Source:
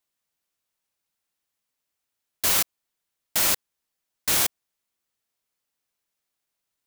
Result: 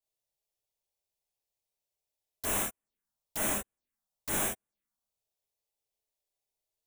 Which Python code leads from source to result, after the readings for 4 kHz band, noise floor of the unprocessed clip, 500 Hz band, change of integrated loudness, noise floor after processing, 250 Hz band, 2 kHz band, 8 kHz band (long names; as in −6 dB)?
−16.0 dB, −83 dBFS, −1.5 dB, −9.5 dB, below −85 dBFS, +0.5 dB, −7.5 dB, −8.5 dB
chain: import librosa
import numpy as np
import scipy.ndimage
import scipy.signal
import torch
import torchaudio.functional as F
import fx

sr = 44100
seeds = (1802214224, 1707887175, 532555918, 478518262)

y = fx.tilt_shelf(x, sr, db=3.5, hz=800.0)
y = fx.rev_gated(y, sr, seeds[0], gate_ms=90, shape='flat', drr_db=-4.5)
y = fx.env_phaser(y, sr, low_hz=240.0, high_hz=4700.0, full_db=-25.5)
y = y * 10.0 ** (-9.0 / 20.0)